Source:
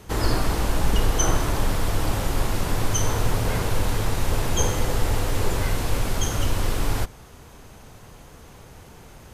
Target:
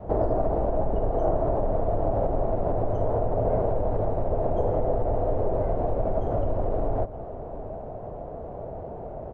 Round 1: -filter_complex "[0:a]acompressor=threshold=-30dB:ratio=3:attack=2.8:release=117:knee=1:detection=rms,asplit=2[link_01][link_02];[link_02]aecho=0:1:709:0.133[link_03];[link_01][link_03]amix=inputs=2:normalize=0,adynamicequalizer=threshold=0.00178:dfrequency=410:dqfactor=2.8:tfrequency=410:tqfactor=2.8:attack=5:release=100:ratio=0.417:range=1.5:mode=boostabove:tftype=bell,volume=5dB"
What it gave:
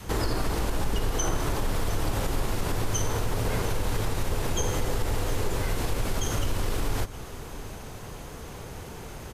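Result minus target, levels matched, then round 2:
500 Hz band −6.5 dB
-filter_complex "[0:a]acompressor=threshold=-30dB:ratio=3:attack=2.8:release=117:knee=1:detection=rms,lowpass=frequency=650:width_type=q:width=6,asplit=2[link_01][link_02];[link_02]aecho=0:1:709:0.133[link_03];[link_01][link_03]amix=inputs=2:normalize=0,adynamicequalizer=threshold=0.00178:dfrequency=410:dqfactor=2.8:tfrequency=410:tqfactor=2.8:attack=5:release=100:ratio=0.417:range=1.5:mode=boostabove:tftype=bell,volume=5dB"

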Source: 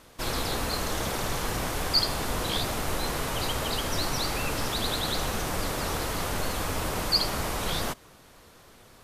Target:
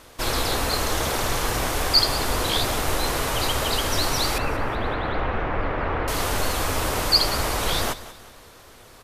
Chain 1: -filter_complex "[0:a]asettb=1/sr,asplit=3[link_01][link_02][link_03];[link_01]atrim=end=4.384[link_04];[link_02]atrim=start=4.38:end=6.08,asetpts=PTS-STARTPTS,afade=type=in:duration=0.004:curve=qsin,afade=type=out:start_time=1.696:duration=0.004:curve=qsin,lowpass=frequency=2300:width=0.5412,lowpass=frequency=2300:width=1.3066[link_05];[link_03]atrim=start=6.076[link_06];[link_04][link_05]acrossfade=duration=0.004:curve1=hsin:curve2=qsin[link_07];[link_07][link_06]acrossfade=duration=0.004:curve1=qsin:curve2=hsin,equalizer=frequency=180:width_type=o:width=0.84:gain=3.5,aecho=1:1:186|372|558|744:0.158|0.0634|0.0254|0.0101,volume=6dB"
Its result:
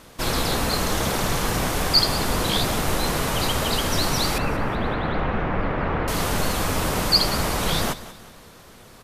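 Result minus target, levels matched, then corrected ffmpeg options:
250 Hz band +4.0 dB
-filter_complex "[0:a]asettb=1/sr,asplit=3[link_01][link_02][link_03];[link_01]atrim=end=4.384[link_04];[link_02]atrim=start=4.38:end=6.08,asetpts=PTS-STARTPTS,afade=type=in:duration=0.004:curve=qsin,afade=type=out:start_time=1.696:duration=0.004:curve=qsin,lowpass=frequency=2300:width=0.5412,lowpass=frequency=2300:width=1.3066[link_05];[link_03]atrim=start=6.076[link_06];[link_04][link_05]acrossfade=duration=0.004:curve1=hsin:curve2=qsin[link_07];[link_07][link_06]acrossfade=duration=0.004:curve1=qsin:curve2=hsin,equalizer=frequency=180:width_type=o:width=0.84:gain=-6.5,aecho=1:1:186|372|558|744:0.158|0.0634|0.0254|0.0101,volume=6dB"

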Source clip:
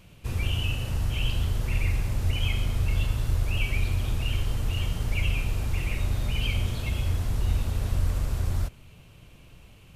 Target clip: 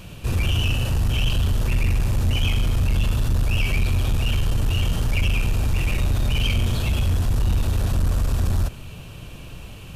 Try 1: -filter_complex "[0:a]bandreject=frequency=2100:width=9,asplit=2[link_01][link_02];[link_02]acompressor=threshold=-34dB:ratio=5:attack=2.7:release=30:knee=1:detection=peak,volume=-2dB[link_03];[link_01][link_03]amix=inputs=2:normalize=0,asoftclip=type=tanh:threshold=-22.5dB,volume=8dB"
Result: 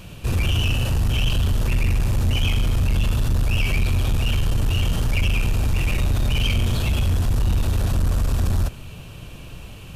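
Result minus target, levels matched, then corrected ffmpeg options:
downward compressor: peak gain reduction −7 dB
-filter_complex "[0:a]bandreject=frequency=2100:width=9,asplit=2[link_01][link_02];[link_02]acompressor=threshold=-43dB:ratio=5:attack=2.7:release=30:knee=1:detection=peak,volume=-2dB[link_03];[link_01][link_03]amix=inputs=2:normalize=0,asoftclip=type=tanh:threshold=-22.5dB,volume=8dB"

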